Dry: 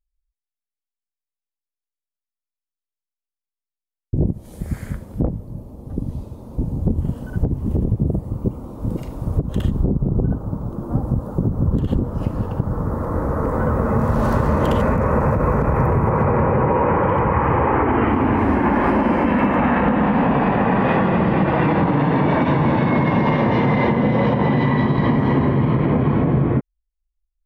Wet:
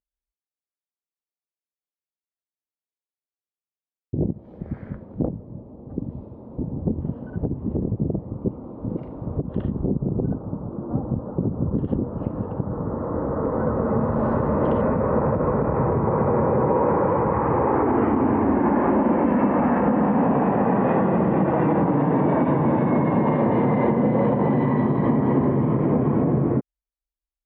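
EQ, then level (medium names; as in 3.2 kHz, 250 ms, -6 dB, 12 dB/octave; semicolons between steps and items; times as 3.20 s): band-pass filter 420 Hz, Q 0.53; distance through air 270 m; 0.0 dB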